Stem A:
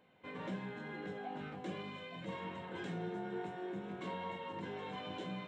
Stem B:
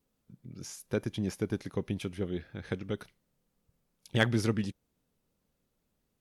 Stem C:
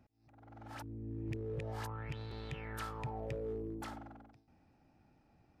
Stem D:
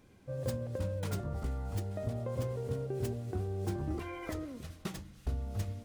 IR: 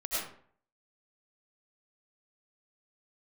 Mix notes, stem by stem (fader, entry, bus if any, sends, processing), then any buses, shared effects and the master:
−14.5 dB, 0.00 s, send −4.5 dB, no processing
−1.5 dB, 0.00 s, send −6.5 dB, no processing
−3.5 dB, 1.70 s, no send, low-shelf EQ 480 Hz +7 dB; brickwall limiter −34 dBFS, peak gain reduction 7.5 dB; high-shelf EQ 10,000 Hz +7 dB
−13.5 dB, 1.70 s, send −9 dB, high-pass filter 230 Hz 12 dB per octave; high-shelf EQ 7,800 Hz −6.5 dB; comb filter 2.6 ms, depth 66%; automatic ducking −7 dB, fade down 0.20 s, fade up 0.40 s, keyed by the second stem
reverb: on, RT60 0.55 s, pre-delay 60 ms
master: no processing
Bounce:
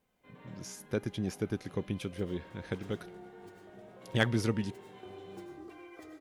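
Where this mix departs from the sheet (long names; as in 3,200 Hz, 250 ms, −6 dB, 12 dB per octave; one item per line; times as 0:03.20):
stem B: send off
stem C: muted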